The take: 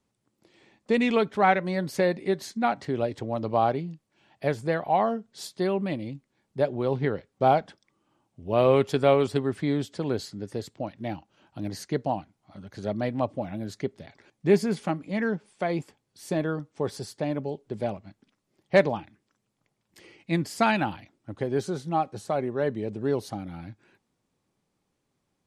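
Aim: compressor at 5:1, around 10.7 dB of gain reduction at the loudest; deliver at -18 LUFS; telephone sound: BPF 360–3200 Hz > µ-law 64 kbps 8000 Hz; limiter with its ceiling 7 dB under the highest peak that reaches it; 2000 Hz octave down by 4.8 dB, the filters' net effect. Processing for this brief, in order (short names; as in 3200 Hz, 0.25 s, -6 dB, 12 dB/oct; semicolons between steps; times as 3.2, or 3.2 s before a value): bell 2000 Hz -5.5 dB; compressor 5:1, threshold -27 dBFS; limiter -23 dBFS; BPF 360–3200 Hz; gain +20.5 dB; µ-law 64 kbps 8000 Hz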